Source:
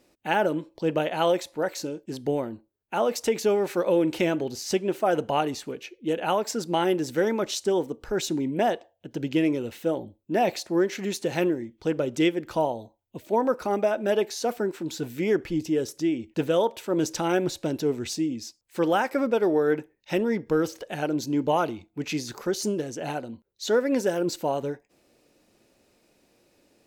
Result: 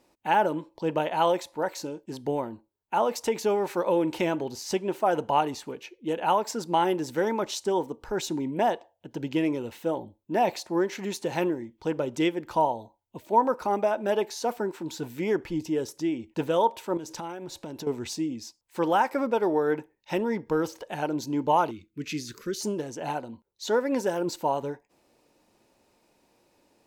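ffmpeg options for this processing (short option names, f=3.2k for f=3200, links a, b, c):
-filter_complex "[0:a]asettb=1/sr,asplit=3[a][b][c];[a]atrim=end=16.974[d];[b]atrim=start=16.97:end=17.87,asetpts=PTS-STARTPTS,afade=t=in:d=0.004:c=qsin,afade=t=out:st=0.896:d=0.004:c=qsin,acompressor=threshold=-31dB:ratio=12:attack=3.2:release=140:knee=1:detection=peak[e];[c]atrim=start=17.866[f];[d][e]acrossfade=d=0.004:c1=hsin:c2=qsin[g];[g][f]acrossfade=d=0.004:c1=qsin:c2=hsin,asettb=1/sr,asplit=3[h][i][j];[h]atrim=end=21.714[k];[i]atrim=start=21.71:end=22.61,asetpts=PTS-STARTPTS,afade=t=in:d=0.004:c=qsin,afade=t=out:st=0.896:d=0.004:c=qsin,asuperstop=centerf=790:order=4:qfactor=0.71[l];[j]atrim=start=22.606[m];[k][l]acrossfade=d=0.004:c1=hsin:c2=qsin[n];[n][m]acrossfade=d=0.004:c1=qsin:c2=hsin,equalizer=f=930:t=o:w=0.45:g=10,volume=-3dB"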